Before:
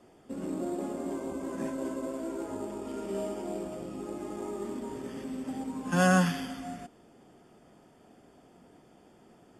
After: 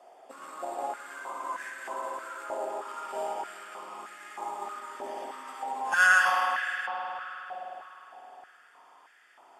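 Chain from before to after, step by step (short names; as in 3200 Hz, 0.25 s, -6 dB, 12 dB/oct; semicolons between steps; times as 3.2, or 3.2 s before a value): spring tank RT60 3.9 s, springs 50 ms, chirp 45 ms, DRR -0.5 dB; stepped high-pass 3.2 Hz 700–1700 Hz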